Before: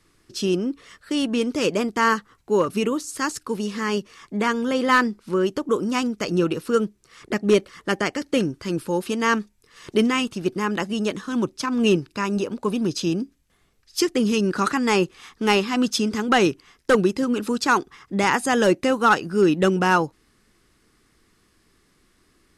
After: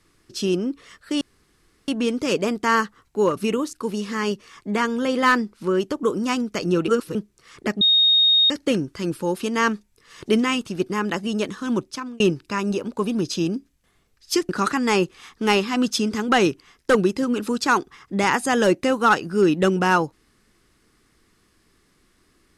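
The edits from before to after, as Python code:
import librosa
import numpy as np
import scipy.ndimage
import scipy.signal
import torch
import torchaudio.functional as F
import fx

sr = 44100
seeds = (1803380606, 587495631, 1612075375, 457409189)

y = fx.edit(x, sr, fx.insert_room_tone(at_s=1.21, length_s=0.67),
    fx.cut(start_s=3.06, length_s=0.33),
    fx.reverse_span(start_s=6.54, length_s=0.27),
    fx.bleep(start_s=7.47, length_s=0.69, hz=3720.0, db=-13.0),
    fx.fade_out_span(start_s=11.49, length_s=0.37),
    fx.cut(start_s=14.15, length_s=0.34), tone=tone)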